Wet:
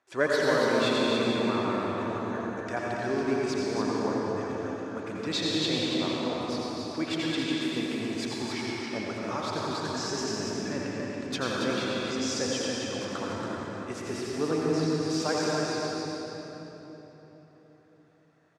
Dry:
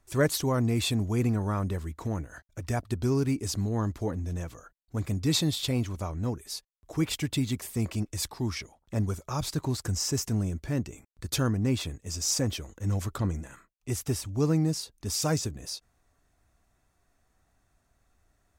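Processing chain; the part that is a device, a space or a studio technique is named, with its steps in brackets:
station announcement (band-pass filter 360–4,000 Hz; parametric band 1,600 Hz +4 dB 0.23 octaves; loudspeakers that aren't time-aligned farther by 29 metres −9 dB, 96 metres −5 dB; convolution reverb RT60 3.9 s, pre-delay 80 ms, DRR −3.5 dB)

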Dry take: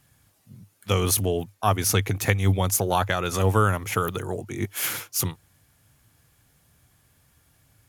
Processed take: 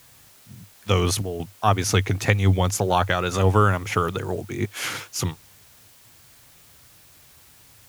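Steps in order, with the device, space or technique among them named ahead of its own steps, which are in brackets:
worn cassette (low-pass filter 6,500 Hz 12 dB per octave; tape wow and flutter; tape dropouts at 0:01.22/0:05.88, 174 ms −8 dB; white noise bed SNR 28 dB)
level +2.5 dB

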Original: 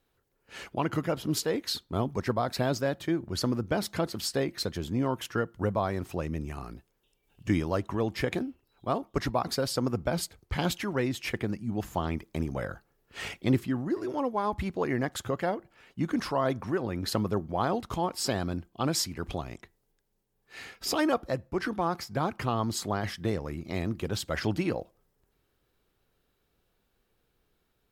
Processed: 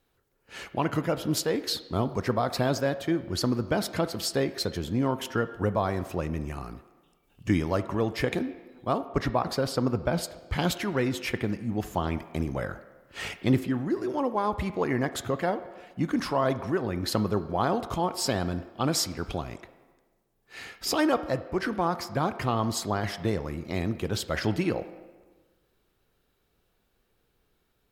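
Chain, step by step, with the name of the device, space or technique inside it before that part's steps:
filtered reverb send (on a send: high-pass filter 280 Hz 12 dB per octave + low-pass filter 3,300 Hz 12 dB per octave + convolution reverb RT60 1.3 s, pre-delay 20 ms, DRR 12 dB)
0:09.07–0:10.24: on the sum: bass and treble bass +1 dB, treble −6 dB
level +2 dB

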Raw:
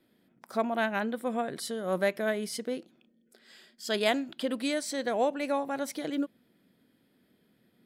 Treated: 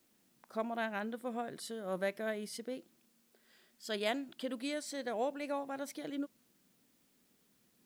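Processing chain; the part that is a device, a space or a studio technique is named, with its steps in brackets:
plain cassette with noise reduction switched in (one half of a high-frequency compander decoder only; tape wow and flutter 22 cents; white noise bed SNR 33 dB)
level −8 dB

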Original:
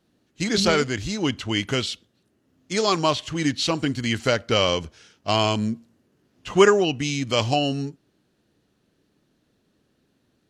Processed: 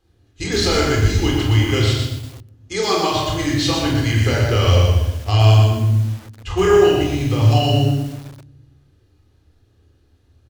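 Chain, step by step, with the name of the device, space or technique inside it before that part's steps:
car stereo with a boomy subwoofer (low shelf with overshoot 120 Hz +10 dB, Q 3; brickwall limiter −12.5 dBFS, peak gain reduction 8 dB)
0:06.72–0:07.52: de-essing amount 85%
ambience of single reflections 27 ms −6 dB, 44 ms −7 dB
rectangular room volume 3,100 cubic metres, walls furnished, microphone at 3.9 metres
feedback echo at a low word length 120 ms, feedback 35%, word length 6 bits, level −4 dB
level −1 dB

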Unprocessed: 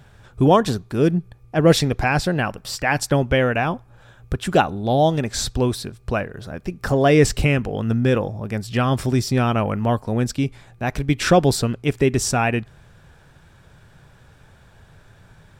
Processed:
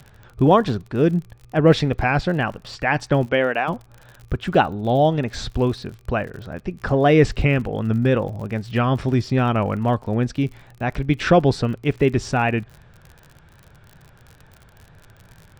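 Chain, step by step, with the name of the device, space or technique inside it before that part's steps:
lo-fi chain (low-pass filter 3,400 Hz 12 dB per octave; tape wow and flutter; surface crackle 51 per second −33 dBFS)
0:03.25–0:03.67: high-pass filter 170 Hz → 440 Hz 12 dB per octave

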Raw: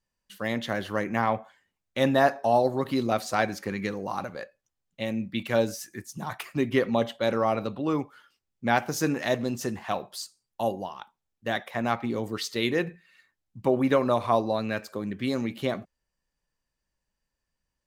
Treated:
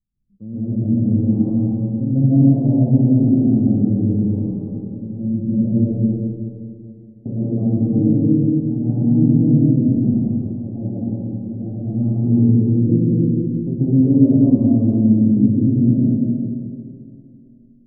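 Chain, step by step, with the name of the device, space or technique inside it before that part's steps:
next room (low-pass filter 260 Hz 24 dB per octave; convolution reverb RT60 1.1 s, pre-delay 119 ms, DRR −10 dB)
0:05.93–0:07.26: Butterworth high-pass 2,300 Hz 36 dB per octave
comb and all-pass reverb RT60 2.6 s, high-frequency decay 0.45×, pre-delay 65 ms, DRR −3.5 dB
level +3.5 dB

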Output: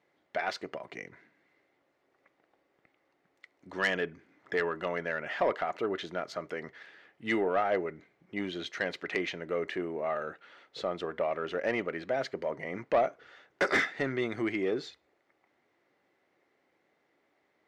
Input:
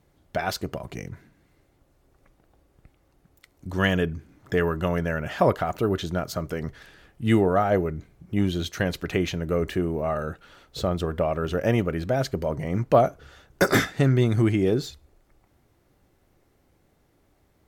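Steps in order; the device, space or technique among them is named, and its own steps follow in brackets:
intercom (band-pass filter 350–4,200 Hz; parametric band 2,000 Hz +8 dB 0.39 octaves; soft clipping −14 dBFS, distortion −16 dB)
level −4.5 dB

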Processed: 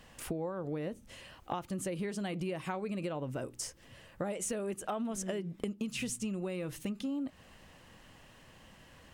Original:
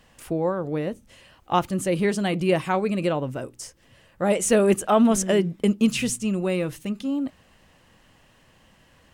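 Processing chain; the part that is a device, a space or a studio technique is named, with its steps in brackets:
serial compression, leveller first (downward compressor 2.5 to 1, threshold −24 dBFS, peak gain reduction 7.5 dB; downward compressor, threshold −34 dBFS, peak gain reduction 13 dB)

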